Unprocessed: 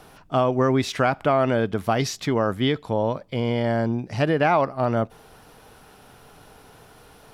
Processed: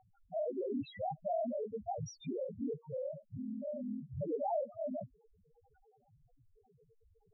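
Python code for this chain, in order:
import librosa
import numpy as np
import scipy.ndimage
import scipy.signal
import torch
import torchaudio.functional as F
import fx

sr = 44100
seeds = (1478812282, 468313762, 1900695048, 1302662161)

y = x * np.sin(2.0 * np.pi * 21.0 * np.arange(len(x)) / sr)
y = fx.spec_topn(y, sr, count=1)
y = y * 10.0 ** (-1.0 / 20.0)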